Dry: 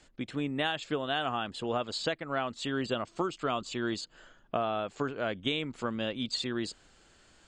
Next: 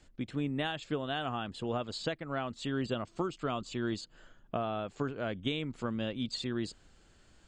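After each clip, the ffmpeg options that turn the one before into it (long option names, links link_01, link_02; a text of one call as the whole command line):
ffmpeg -i in.wav -af "lowshelf=frequency=250:gain=9.5,volume=-5dB" out.wav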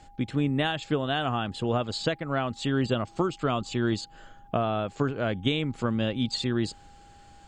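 ffmpeg -i in.wav -af "aeval=exprs='val(0)+0.001*sin(2*PI*810*n/s)':channel_layout=same,equalizer=frequency=110:width_type=o:width=0.98:gain=3.5,volume=7dB" out.wav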